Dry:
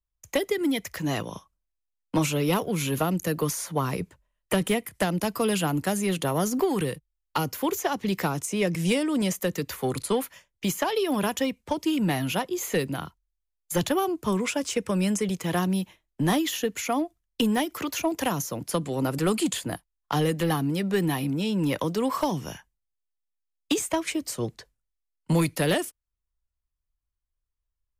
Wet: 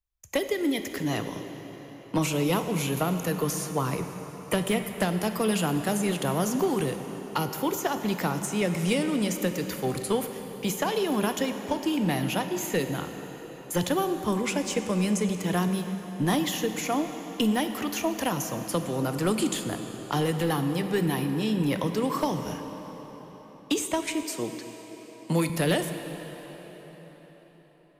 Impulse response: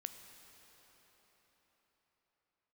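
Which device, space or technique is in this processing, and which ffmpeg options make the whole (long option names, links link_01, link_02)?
cathedral: -filter_complex "[1:a]atrim=start_sample=2205[link_01];[0:a][link_01]afir=irnorm=-1:irlink=0,asettb=1/sr,asplit=3[link_02][link_03][link_04];[link_02]atrim=end=24.234[link_05];[link_03]atrim=start=24.23:end=25.5,asetpts=PTS-STARTPTS,afade=type=in:duration=0.004:curve=qsin,afade=type=out:start_time=1.266:duration=0.004:curve=qsin,highpass=frequency=150:width=0.5412,highpass=frequency=150:width=1.3066[link_06];[link_04]atrim=start=25.496[link_07];[link_05][link_06]acrossfade=duration=0.004:curve1=hsin:curve2=qsin[link_08];[link_08][link_07]acrossfade=duration=0.004:curve1=qsin:curve2=hsin,volume=2.5dB"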